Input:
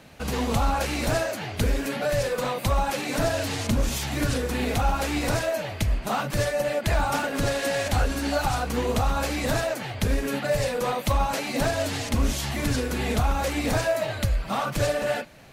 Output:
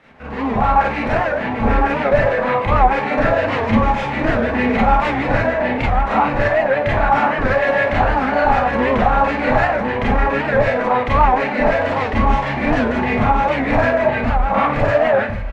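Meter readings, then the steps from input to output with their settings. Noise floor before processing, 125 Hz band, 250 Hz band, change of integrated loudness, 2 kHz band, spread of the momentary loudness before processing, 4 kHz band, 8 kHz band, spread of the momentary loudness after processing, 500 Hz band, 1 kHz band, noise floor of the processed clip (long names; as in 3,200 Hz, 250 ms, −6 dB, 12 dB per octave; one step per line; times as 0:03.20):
−35 dBFS, +4.5 dB, +9.0 dB, +9.0 dB, +11.0 dB, 3 LU, −1.5 dB, below −15 dB, 4 LU, +9.5 dB, +13.0 dB, −23 dBFS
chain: in parallel at −8.5 dB: bit-depth reduction 6 bits, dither triangular
on the sum: automatic gain control gain up to 8 dB
auto-filter low-pass square 6.6 Hz 960–2,000 Hz
on a send: single-tap delay 1,055 ms −5 dB
on the sum: four-comb reverb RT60 0.32 s, combs from 28 ms, DRR −6 dB
wow of a warped record 78 rpm, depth 160 cents
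level −10 dB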